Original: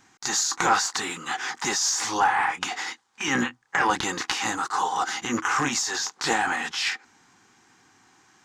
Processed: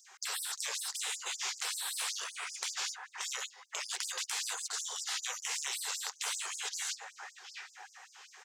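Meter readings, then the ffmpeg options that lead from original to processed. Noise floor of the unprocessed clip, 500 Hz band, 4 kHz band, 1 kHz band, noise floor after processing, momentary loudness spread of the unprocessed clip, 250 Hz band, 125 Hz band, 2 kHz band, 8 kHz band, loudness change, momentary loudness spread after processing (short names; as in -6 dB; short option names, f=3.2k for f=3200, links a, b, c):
-62 dBFS, -20.5 dB, -7.0 dB, -21.0 dB, -61 dBFS, 8 LU, under -40 dB, under -40 dB, -14.5 dB, -7.5 dB, -11.0 dB, 13 LU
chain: -filter_complex "[0:a]asplit=2[a][b];[b]adelay=707,lowpass=f=4k:p=1,volume=-22dB,asplit=2[c][d];[d]adelay=707,lowpass=f=4k:p=1,volume=0.44,asplit=2[e][f];[f]adelay=707,lowpass=f=4k:p=1,volume=0.44[g];[a][c][e][g]amix=inputs=4:normalize=0,acrossover=split=210|3500[h][i][j];[i]acompressor=threshold=-38dB:ratio=6[k];[h][k][j]amix=inputs=3:normalize=0,afftfilt=real='re*lt(hypot(re,im),0.0316)':imag='im*lt(hypot(re,im),0.0316)':win_size=1024:overlap=0.75,afftfilt=real='re*gte(b*sr/1024,360*pow(4900/360,0.5+0.5*sin(2*PI*5.2*pts/sr)))':imag='im*gte(b*sr/1024,360*pow(4900/360,0.5+0.5*sin(2*PI*5.2*pts/sr)))':win_size=1024:overlap=0.75,volume=4dB"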